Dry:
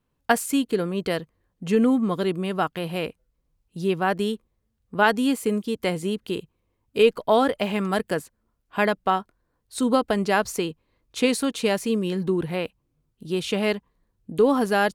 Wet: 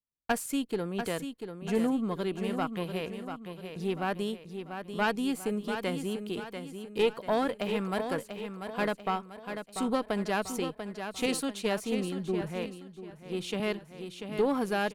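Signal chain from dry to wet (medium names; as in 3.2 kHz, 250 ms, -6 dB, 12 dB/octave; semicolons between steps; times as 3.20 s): single-diode clipper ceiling -16 dBFS; gate with hold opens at -40 dBFS; feedback delay 691 ms, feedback 43%, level -8 dB; 11.26–13.60 s: three bands expanded up and down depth 70%; trim -7 dB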